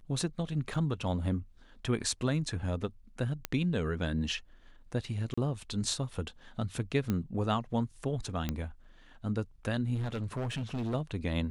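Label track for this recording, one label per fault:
0.740000	0.740000	gap 3.7 ms
3.450000	3.450000	pop -15 dBFS
5.340000	5.380000	gap 35 ms
7.100000	7.100000	pop -18 dBFS
8.490000	8.490000	pop -18 dBFS
9.940000	10.950000	clipped -30.5 dBFS

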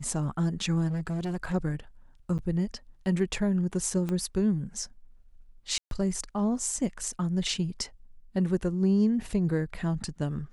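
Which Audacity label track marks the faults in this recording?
0.870000	1.550000	clipped -27.5 dBFS
2.380000	2.390000	gap 8.4 ms
4.090000	4.090000	pop -20 dBFS
5.780000	5.910000	gap 0.132 s

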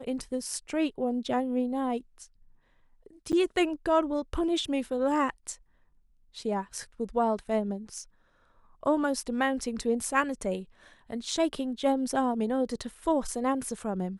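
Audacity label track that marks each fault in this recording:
3.320000	3.330000	gap 8.9 ms

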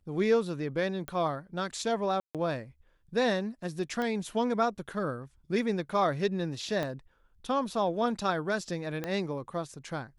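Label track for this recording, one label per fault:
1.080000	1.080000	pop -22 dBFS
2.200000	2.350000	gap 0.147 s
4.020000	4.020000	pop -21 dBFS
6.830000	6.830000	pop -19 dBFS
9.040000	9.040000	pop -19 dBFS

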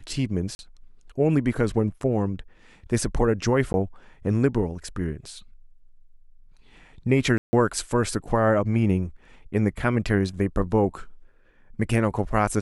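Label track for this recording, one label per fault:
0.550000	0.590000	gap 41 ms
3.730000	3.740000	gap 11 ms
7.380000	7.530000	gap 0.15 s

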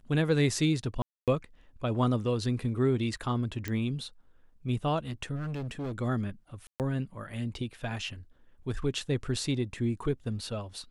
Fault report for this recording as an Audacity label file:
1.020000	1.280000	gap 0.257 s
3.680000	3.680000	pop -19 dBFS
5.350000	5.990000	clipped -32 dBFS
6.670000	6.800000	gap 0.128 s

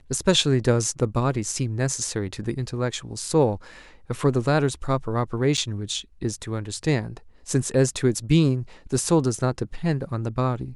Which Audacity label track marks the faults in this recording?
5.570000	5.580000	gap 7.1 ms

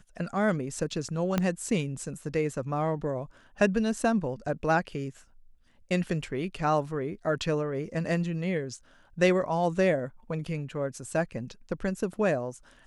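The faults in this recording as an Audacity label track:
1.380000	1.380000	pop -12 dBFS

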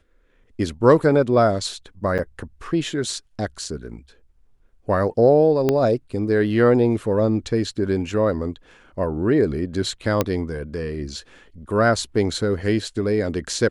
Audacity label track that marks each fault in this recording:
2.180000	2.190000	gap 8 ms
5.690000	5.690000	pop -7 dBFS
10.210000	10.210000	pop -5 dBFS

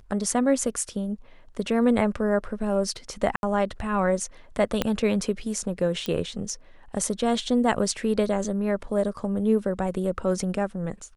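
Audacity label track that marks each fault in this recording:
3.360000	3.430000	gap 71 ms
4.820000	4.820000	pop -9 dBFS
6.060000	6.060000	pop -15 dBFS

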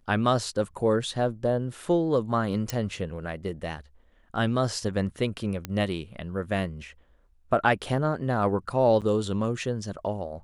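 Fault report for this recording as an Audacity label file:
2.700000	2.700000	pop
5.650000	5.650000	pop -16 dBFS
9.010000	9.020000	gap 8.2 ms

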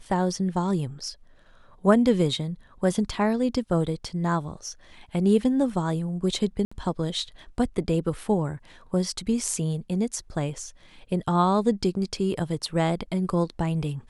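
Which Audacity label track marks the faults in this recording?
6.650000	6.710000	gap 65 ms

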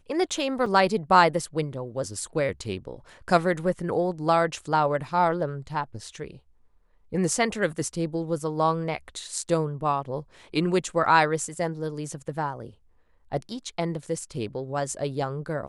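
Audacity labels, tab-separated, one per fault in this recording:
0.660000	0.660000	gap 4.1 ms

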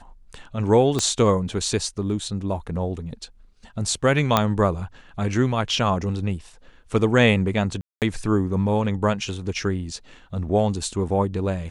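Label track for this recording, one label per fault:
0.990000	0.990000	pop -9 dBFS
4.370000	4.370000	pop -3 dBFS
7.810000	8.020000	gap 0.208 s

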